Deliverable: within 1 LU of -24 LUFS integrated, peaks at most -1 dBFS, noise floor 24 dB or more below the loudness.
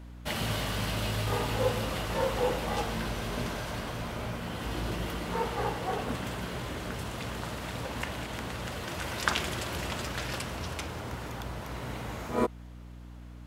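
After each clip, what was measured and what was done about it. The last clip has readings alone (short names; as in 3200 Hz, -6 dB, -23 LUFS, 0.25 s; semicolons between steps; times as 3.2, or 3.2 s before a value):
hum 60 Hz; harmonics up to 300 Hz; hum level -42 dBFS; loudness -33.5 LUFS; peak -7.0 dBFS; loudness target -24.0 LUFS
-> de-hum 60 Hz, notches 5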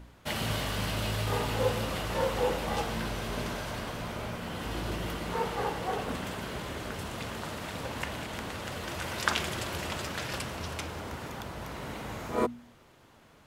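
hum none; loudness -34.0 LUFS; peak -7.0 dBFS; loudness target -24.0 LUFS
-> gain +10 dB; limiter -1 dBFS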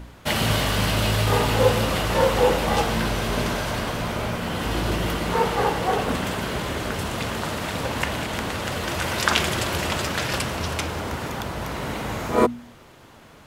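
loudness -24.0 LUFS; peak -1.0 dBFS; noise floor -48 dBFS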